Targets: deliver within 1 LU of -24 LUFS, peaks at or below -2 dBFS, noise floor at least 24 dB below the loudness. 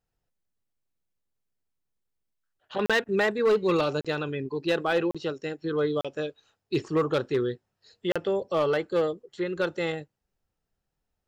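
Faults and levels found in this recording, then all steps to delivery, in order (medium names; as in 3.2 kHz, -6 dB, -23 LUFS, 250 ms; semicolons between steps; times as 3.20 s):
clipped samples 0.6%; clipping level -17.5 dBFS; dropouts 5; longest dropout 36 ms; loudness -27.5 LUFS; peak level -17.5 dBFS; loudness target -24.0 LUFS
-> clip repair -17.5 dBFS; interpolate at 2.86/4.01/5.11/6.01/8.12 s, 36 ms; trim +3.5 dB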